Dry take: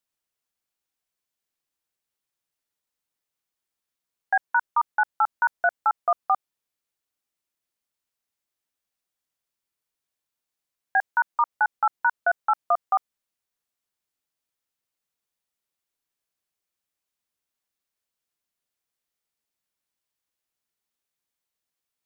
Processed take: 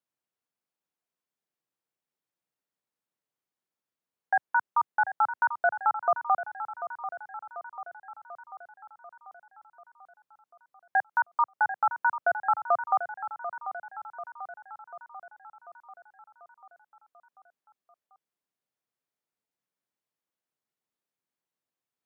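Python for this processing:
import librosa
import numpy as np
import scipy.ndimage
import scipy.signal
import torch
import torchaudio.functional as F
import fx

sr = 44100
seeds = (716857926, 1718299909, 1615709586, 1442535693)

y = scipy.signal.sosfilt(scipy.signal.butter(4, 110.0, 'highpass', fs=sr, output='sos'), x)
y = fx.high_shelf(y, sr, hz=2000.0, db=-11.0)
y = fx.echo_feedback(y, sr, ms=741, feedback_pct=59, wet_db=-11)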